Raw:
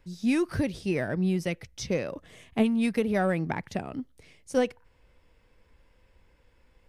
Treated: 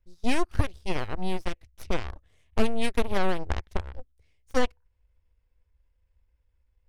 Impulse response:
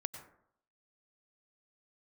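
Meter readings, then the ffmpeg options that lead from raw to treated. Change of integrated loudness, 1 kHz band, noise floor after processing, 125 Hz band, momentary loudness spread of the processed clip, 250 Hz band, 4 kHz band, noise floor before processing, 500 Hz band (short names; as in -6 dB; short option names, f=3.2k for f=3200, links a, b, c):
-2.5 dB, +3.0 dB, -71 dBFS, -1.5 dB, 13 LU, -6.0 dB, +3.5 dB, -64 dBFS, -2.5 dB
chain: -af "aeval=exprs='0.266*(cos(1*acos(clip(val(0)/0.266,-1,1)))-cos(1*PI/2))+0.0422*(cos(7*acos(clip(val(0)/0.266,-1,1)))-cos(7*PI/2))+0.0211*(cos(8*acos(clip(val(0)/0.266,-1,1)))-cos(8*PI/2))':c=same,lowshelf=f=110:t=q:w=1.5:g=13"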